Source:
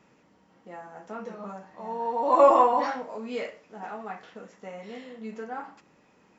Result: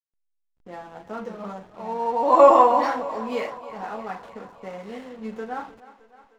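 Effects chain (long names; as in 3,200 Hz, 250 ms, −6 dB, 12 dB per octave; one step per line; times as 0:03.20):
slack as between gear wheels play −45 dBFS
feedback echo with a high-pass in the loop 309 ms, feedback 67%, high-pass 250 Hz, level −16.5 dB
level +4.5 dB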